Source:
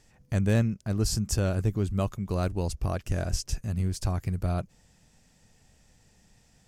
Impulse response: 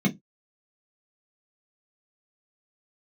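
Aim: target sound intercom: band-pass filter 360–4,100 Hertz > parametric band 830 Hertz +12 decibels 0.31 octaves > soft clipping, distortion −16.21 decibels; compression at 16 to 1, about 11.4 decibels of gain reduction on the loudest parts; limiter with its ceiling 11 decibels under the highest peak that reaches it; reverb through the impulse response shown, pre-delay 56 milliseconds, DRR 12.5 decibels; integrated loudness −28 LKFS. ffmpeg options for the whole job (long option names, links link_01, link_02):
-filter_complex "[0:a]acompressor=threshold=-29dB:ratio=16,alimiter=level_in=7dB:limit=-24dB:level=0:latency=1,volume=-7dB,asplit=2[link_01][link_02];[1:a]atrim=start_sample=2205,adelay=56[link_03];[link_02][link_03]afir=irnorm=-1:irlink=0,volume=-22.5dB[link_04];[link_01][link_04]amix=inputs=2:normalize=0,highpass=360,lowpass=4100,equalizer=frequency=830:width_type=o:width=0.31:gain=12,asoftclip=threshold=-36dB,volume=19dB"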